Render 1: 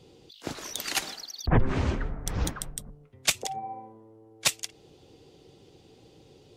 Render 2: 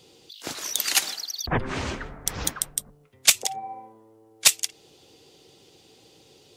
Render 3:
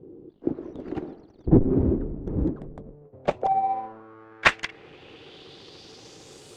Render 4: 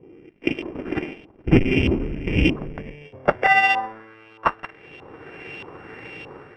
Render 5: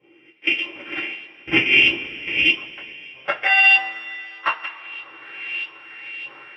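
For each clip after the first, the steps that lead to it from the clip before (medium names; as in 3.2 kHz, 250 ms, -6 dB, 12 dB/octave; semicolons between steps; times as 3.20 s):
tilt EQ +2.5 dB/octave; trim +2 dB
square wave that keeps the level; low-pass sweep 340 Hz -> 8.6 kHz, 2.55–6.51 s; trim +2 dB
sorted samples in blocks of 16 samples; level rider gain up to 9.5 dB; LFO low-pass saw up 1.6 Hz 980–3100 Hz; trim -2 dB
band-pass filter 2.9 kHz, Q 1.9; random-step tremolo 1.6 Hz; reverberation, pre-delay 3 ms, DRR -7 dB; trim +7 dB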